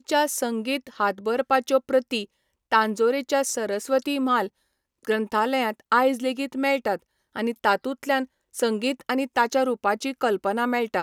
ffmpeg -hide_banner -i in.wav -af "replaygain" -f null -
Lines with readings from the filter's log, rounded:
track_gain = +4.2 dB
track_peak = 0.357